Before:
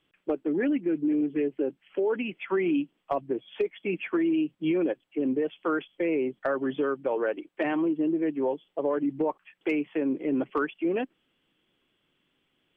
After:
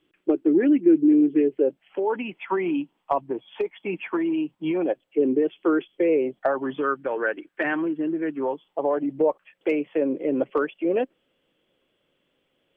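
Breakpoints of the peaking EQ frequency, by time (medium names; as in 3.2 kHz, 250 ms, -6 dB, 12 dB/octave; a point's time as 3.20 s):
peaking EQ +11.5 dB 0.63 oct
1.42 s 340 Hz
2.00 s 910 Hz
4.71 s 910 Hz
5.33 s 360 Hz
5.90 s 360 Hz
7.05 s 1.6 kHz
8.19 s 1.6 kHz
9.20 s 540 Hz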